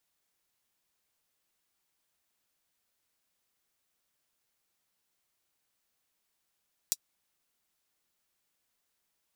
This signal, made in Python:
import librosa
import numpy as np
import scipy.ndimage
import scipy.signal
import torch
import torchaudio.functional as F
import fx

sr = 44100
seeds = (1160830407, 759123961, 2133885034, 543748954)

y = fx.drum_hat(sr, length_s=0.24, from_hz=5200.0, decay_s=0.05)